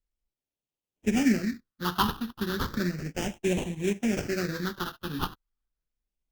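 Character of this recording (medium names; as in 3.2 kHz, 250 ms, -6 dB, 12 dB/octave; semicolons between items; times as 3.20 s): aliases and images of a low sample rate 2.1 kHz, jitter 20%; phasing stages 6, 0.34 Hz, lowest notch 580–1300 Hz; Opus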